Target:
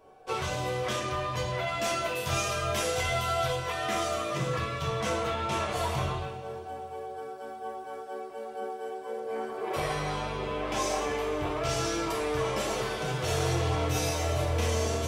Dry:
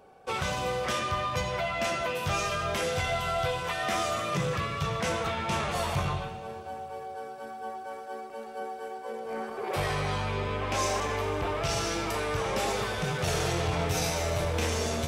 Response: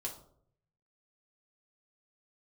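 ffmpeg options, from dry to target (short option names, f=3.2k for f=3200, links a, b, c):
-filter_complex "[0:a]asettb=1/sr,asplit=3[a][b][c];[a]atrim=end=1.674[d];[b]atrim=start=1.67:end=3.56,asetpts=PTS-STARTPTS,afade=t=in:d=0.004:c=qsin,afade=t=out:st=1.886:d=0.004:c=qsin,highshelf=f=4.5k:g=7[e];[c]atrim=start=3.556[f];[d][e]acrossfade=d=0.004:c1=hsin:c2=qsin[g];[g][f]acrossfade=d=0.004:c1=qsin:c2=hsin[h];[1:a]atrim=start_sample=2205,atrim=end_sample=3087[i];[h][i]afir=irnorm=-1:irlink=0"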